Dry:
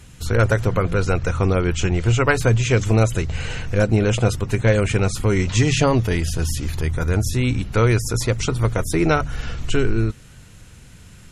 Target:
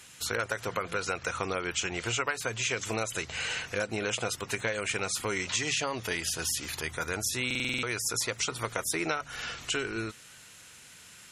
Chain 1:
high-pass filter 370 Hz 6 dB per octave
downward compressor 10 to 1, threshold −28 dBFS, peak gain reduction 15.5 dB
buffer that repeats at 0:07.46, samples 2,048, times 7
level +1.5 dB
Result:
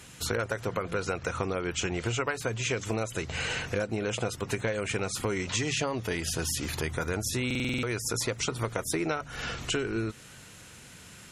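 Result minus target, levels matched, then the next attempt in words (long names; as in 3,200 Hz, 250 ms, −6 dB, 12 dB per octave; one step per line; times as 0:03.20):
500 Hz band +3.0 dB
high-pass filter 1,400 Hz 6 dB per octave
downward compressor 10 to 1, threshold −28 dBFS, peak gain reduction 12.5 dB
buffer that repeats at 0:07.46, samples 2,048, times 7
level +1.5 dB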